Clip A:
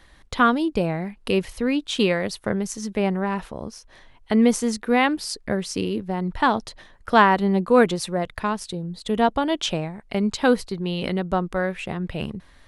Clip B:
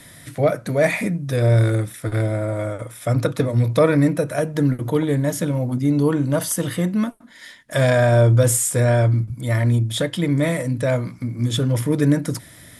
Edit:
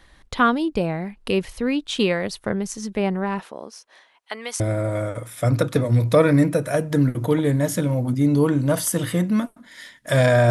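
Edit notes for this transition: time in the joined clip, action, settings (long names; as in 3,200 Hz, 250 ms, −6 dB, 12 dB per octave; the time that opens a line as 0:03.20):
clip A
0:03.39–0:04.60: high-pass filter 250 Hz → 1,300 Hz
0:04.60: continue with clip B from 0:02.24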